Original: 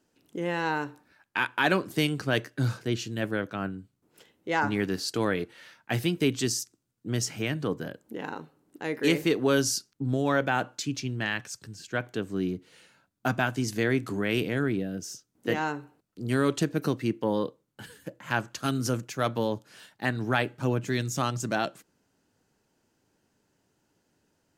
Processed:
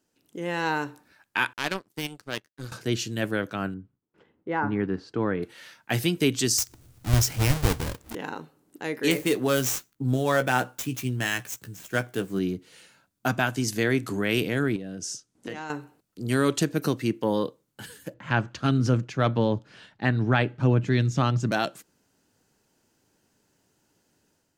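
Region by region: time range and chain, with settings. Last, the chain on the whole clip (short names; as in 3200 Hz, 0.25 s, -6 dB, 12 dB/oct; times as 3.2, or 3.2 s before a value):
1.53–2.72 resonator 100 Hz, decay 0.16 s, mix 40% + de-esser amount 60% + power-law curve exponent 2
3.74–5.43 bell 640 Hz -5 dB 0.66 oct + gate with hold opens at -57 dBFS, closes at -63 dBFS + LPF 1300 Hz
6.58–8.15 half-waves squared off + resonant low shelf 120 Hz +12.5 dB, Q 1.5 + upward compressor, threshold -38 dBFS
9.11–12.39 median filter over 9 samples + high shelf 7800 Hz +11 dB + doubler 16 ms -8 dB
14.76–15.7 LPF 10000 Hz 24 dB/oct + compressor 5:1, threshold -34 dBFS
18.14–21.52 LPF 3500 Hz + low shelf 190 Hz +10.5 dB
whole clip: high shelf 4300 Hz +6 dB; AGC gain up to 6.5 dB; gain -4.5 dB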